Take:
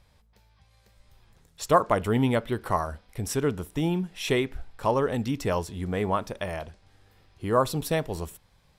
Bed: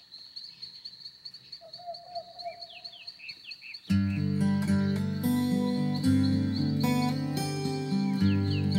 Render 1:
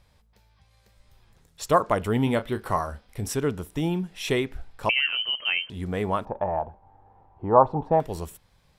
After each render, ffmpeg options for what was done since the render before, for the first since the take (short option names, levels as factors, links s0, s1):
-filter_complex "[0:a]asettb=1/sr,asplit=3[s0][s1][s2];[s0]atrim=end=2.244[s3];[s1]atrim=start=2.24:end=3.33,asetpts=PTS-STARTPTS,afade=t=in:d=0.004:c=qsin,afade=t=out:st=1.086:d=0.004:c=qsin,asplit=2[s4][s5];[s5]adelay=29,volume=0.299[s6];[s4][s6]amix=inputs=2:normalize=0,atrim=end_sample=48069[s7];[s2]atrim=start=3.326[s8];[s3][s7]acrossfade=d=0.004:c1=hsin:c2=qsin[s9];[s9][s8]acrossfade=d=0.004:c1=qsin:c2=hsin,asettb=1/sr,asplit=3[s10][s11][s12];[s10]atrim=end=4.894[s13];[s11]atrim=start=4.89:end=5.7,asetpts=PTS-STARTPTS,afade=t=in:d=0.004:c=qsin,afade=t=out:st=0.806:d=0.004:c=qsin,lowpass=f=2700:t=q:w=0.5098,lowpass=f=2700:t=q:w=0.6013,lowpass=f=2700:t=q:w=0.9,lowpass=f=2700:t=q:w=2.563,afreqshift=-3200[s14];[s12]atrim=start=5.696[s15];[s13][s14]acrossfade=d=0.004:c1=hsin:c2=qsin[s16];[s16][s15]acrossfade=d=0.004:c1=qsin:c2=hsin,asettb=1/sr,asplit=3[s17][s18][s19];[s17]atrim=end=6.254[s20];[s18]atrim=start=6.25:end=8,asetpts=PTS-STARTPTS,afade=t=in:d=0.004:c=qsin,afade=t=out:st=1.746:d=0.004:c=qsin,lowpass=f=860:t=q:w=7.7[s21];[s19]atrim=start=7.996[s22];[s20][s21]acrossfade=d=0.004:c1=hsin:c2=qsin[s23];[s23][s22]acrossfade=d=0.004:c1=qsin:c2=hsin"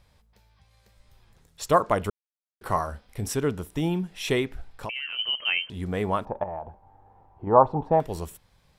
-filter_complex "[0:a]asettb=1/sr,asplit=3[s0][s1][s2];[s0]atrim=end=4.504[s3];[s1]atrim=start=4.5:end=5.19,asetpts=PTS-STARTPTS,afade=t=in:d=0.004:c=qsin,afade=t=out:st=0.686:d=0.004:c=qsin,acompressor=threshold=0.0316:ratio=5:attack=3.2:release=140:knee=1:detection=peak[s4];[s2]atrim=start=5.186[s5];[s3][s4]acrossfade=d=0.004:c1=hsin:c2=qsin[s6];[s6][s5]acrossfade=d=0.004:c1=qsin:c2=hsin,asettb=1/sr,asplit=3[s7][s8][s9];[s7]atrim=end=6.434[s10];[s8]atrim=start=6.43:end=7.47,asetpts=PTS-STARTPTS,afade=t=in:d=0.004:c=qsin,afade=t=out:st=1.036:d=0.004:c=qsin,acompressor=threshold=0.0251:ratio=3:attack=3.2:release=140:knee=1:detection=peak[s11];[s9]atrim=start=7.466[s12];[s10][s11]acrossfade=d=0.004:c1=hsin:c2=qsin[s13];[s13][s12]acrossfade=d=0.004:c1=qsin:c2=hsin,asplit=3[s14][s15][s16];[s14]atrim=end=2.1,asetpts=PTS-STARTPTS,afade=t=out:st=2.096:d=0.004:c=hsin[s17];[s15]atrim=start=2.1:end=2.61,asetpts=PTS-STARTPTS,volume=0[s18];[s16]atrim=start=2.61,asetpts=PTS-STARTPTS,afade=t=in:d=0.004:c=hsin[s19];[s17][s18][s19]concat=n=3:v=0:a=1"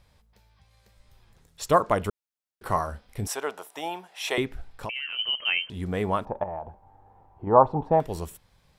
-filter_complex "[0:a]asettb=1/sr,asplit=3[s0][s1][s2];[s0]atrim=end=3.274[s3];[s1]atrim=start=3.27:end=4.38,asetpts=PTS-STARTPTS,afade=t=in:d=0.004:c=qsin,afade=t=out:st=1.106:d=0.004:c=qsin,highpass=f=730:t=q:w=2.5[s4];[s2]atrim=start=4.376[s5];[s3][s4]acrossfade=d=0.004:c1=hsin:c2=qsin[s6];[s6][s5]acrossfade=d=0.004:c1=qsin:c2=hsin"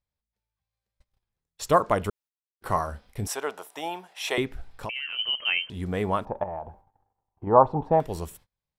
-af "agate=range=0.0398:threshold=0.00282:ratio=16:detection=peak"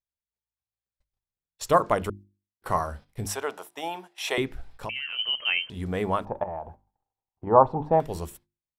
-af "agate=range=0.251:threshold=0.00631:ratio=16:detection=peak,bandreject=f=50:t=h:w=6,bandreject=f=100:t=h:w=6,bandreject=f=150:t=h:w=6,bandreject=f=200:t=h:w=6,bandreject=f=250:t=h:w=6,bandreject=f=300:t=h:w=6,bandreject=f=350:t=h:w=6"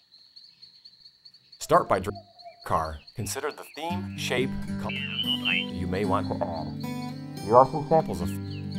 -filter_complex "[1:a]volume=0.447[s0];[0:a][s0]amix=inputs=2:normalize=0"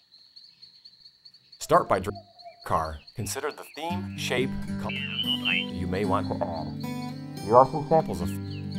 -af anull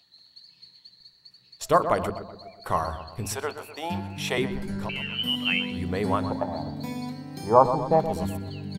-filter_complex "[0:a]asplit=2[s0][s1];[s1]adelay=125,lowpass=f=1900:p=1,volume=0.316,asplit=2[s2][s3];[s3]adelay=125,lowpass=f=1900:p=1,volume=0.53,asplit=2[s4][s5];[s5]adelay=125,lowpass=f=1900:p=1,volume=0.53,asplit=2[s6][s7];[s7]adelay=125,lowpass=f=1900:p=1,volume=0.53,asplit=2[s8][s9];[s9]adelay=125,lowpass=f=1900:p=1,volume=0.53,asplit=2[s10][s11];[s11]adelay=125,lowpass=f=1900:p=1,volume=0.53[s12];[s0][s2][s4][s6][s8][s10][s12]amix=inputs=7:normalize=0"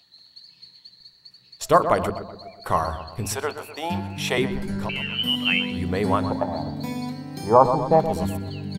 -af "volume=1.5,alimiter=limit=0.891:level=0:latency=1"